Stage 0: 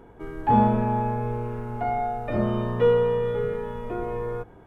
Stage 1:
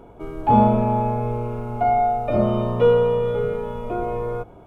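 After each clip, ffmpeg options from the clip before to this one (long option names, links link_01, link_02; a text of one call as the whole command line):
ffmpeg -i in.wav -af "superequalizer=8b=1.78:11b=0.316,volume=3.5dB" out.wav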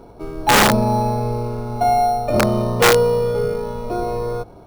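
ffmpeg -i in.wav -filter_complex "[0:a]asplit=2[link_01][link_02];[link_02]acrusher=samples=9:mix=1:aa=0.000001,volume=-8.5dB[link_03];[link_01][link_03]amix=inputs=2:normalize=0,aeval=exprs='(mod(2.11*val(0)+1,2)-1)/2.11':channel_layout=same" out.wav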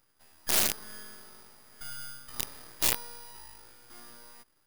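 ffmpeg -i in.wav -af "aderivative,aeval=exprs='abs(val(0))':channel_layout=same,volume=-6dB" out.wav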